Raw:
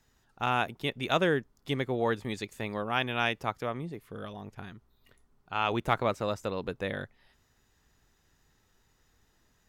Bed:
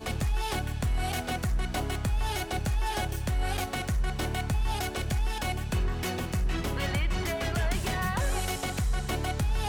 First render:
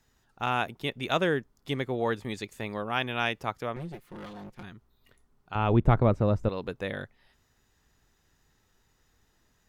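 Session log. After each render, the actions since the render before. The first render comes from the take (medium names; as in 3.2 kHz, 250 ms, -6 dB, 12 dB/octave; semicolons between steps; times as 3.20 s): 3.76–4.63 s: comb filter that takes the minimum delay 5.6 ms; 5.55–6.49 s: tilt EQ -4.5 dB/octave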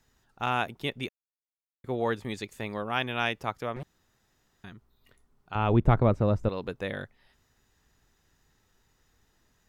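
1.09–1.84 s: mute; 3.83–4.64 s: room tone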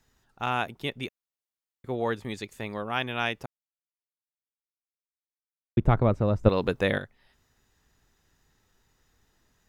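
3.46–5.77 s: mute; 6.46–6.98 s: gain +8.5 dB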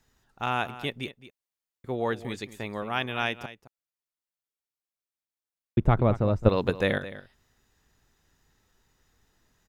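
delay 216 ms -15 dB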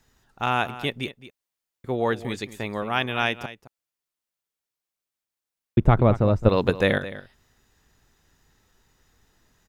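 trim +4.5 dB; peak limiter -3 dBFS, peak gain reduction 3 dB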